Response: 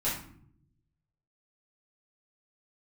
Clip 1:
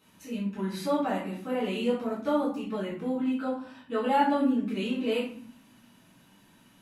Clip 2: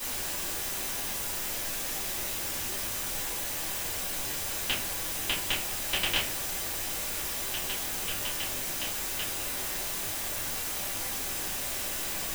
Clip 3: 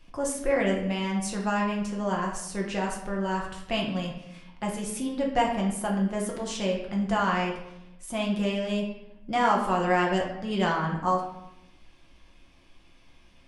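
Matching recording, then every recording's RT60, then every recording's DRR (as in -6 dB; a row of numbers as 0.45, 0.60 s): 1; 0.65, 0.45, 0.90 s; -9.0, -10.0, -2.0 dB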